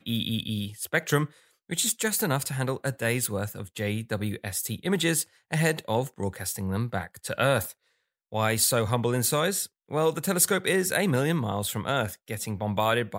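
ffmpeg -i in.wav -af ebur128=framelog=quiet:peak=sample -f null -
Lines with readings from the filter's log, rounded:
Integrated loudness:
  I:         -27.1 LUFS
  Threshold: -37.2 LUFS
Loudness range:
  LRA:         3.7 LU
  Threshold: -47.1 LUFS
  LRA low:   -28.7 LUFS
  LRA high:  -24.9 LUFS
Sample peak:
  Peak:       -7.9 dBFS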